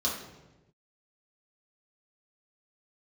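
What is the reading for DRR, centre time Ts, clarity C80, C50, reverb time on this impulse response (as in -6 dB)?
-5.5 dB, 43 ms, 7.0 dB, 4.0 dB, 1.1 s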